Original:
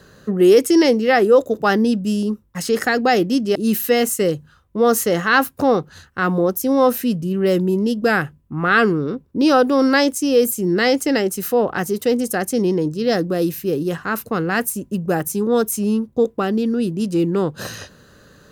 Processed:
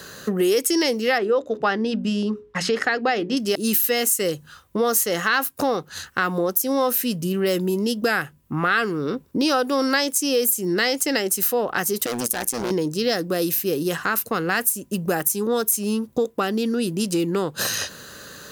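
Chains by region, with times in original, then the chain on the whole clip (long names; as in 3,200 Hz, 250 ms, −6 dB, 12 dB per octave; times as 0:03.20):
0:01.18–0:03.37: low-pass filter 3,200 Hz + mains-hum notches 60/120/180/240/300/360/420 Hz
0:12.06–0:12.71: amplitude modulation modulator 120 Hz, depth 95% + hard clipping −23 dBFS
whole clip: spectral tilt +2.5 dB per octave; downward compressor 3 to 1, threshold −30 dBFS; level +8 dB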